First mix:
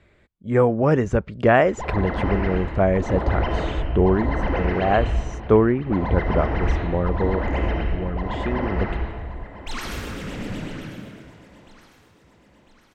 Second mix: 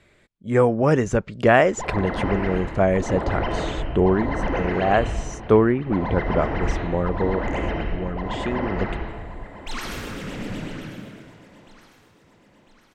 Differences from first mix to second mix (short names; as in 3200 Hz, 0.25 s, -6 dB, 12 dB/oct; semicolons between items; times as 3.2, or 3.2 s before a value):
speech: remove LPF 2500 Hz 6 dB/oct; master: add bell 65 Hz -9 dB 0.64 oct